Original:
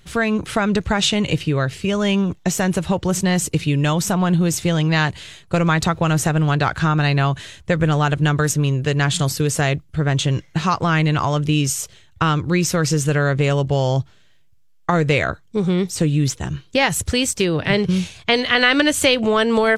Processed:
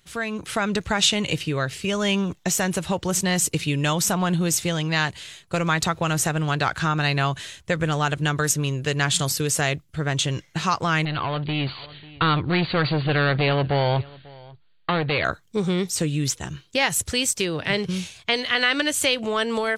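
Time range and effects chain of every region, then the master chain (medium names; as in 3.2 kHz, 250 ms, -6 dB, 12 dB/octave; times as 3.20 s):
11.05–15.25 s: hard clipper -18 dBFS + brick-wall FIR low-pass 4.7 kHz + delay 544 ms -23 dB
whole clip: level rider; tilt EQ +1.5 dB/octave; trim -8.5 dB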